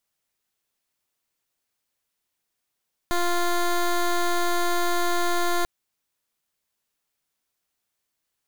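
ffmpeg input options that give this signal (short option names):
-f lavfi -i "aevalsrc='0.0794*(2*lt(mod(349*t,1),0.13)-1)':d=2.54:s=44100"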